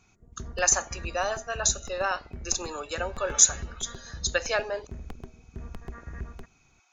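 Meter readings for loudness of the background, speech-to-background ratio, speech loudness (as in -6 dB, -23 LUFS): -43.5 LUFS, 17.0 dB, -26.5 LUFS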